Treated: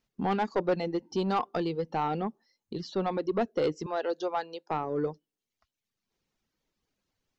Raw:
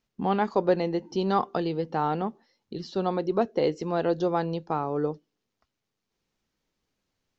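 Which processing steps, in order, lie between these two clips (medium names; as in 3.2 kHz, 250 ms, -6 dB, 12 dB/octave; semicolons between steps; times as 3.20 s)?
reverb removal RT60 0.82 s; 3.86–4.71 s: Bessel high-pass 500 Hz, order 4; saturation -20 dBFS, distortion -13 dB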